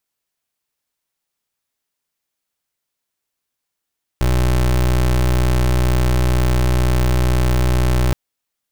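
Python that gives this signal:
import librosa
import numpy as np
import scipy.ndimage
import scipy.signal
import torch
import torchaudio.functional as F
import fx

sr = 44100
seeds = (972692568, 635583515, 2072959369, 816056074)

y = fx.pulse(sr, length_s=3.92, hz=62.1, level_db=-15.0, duty_pct=26)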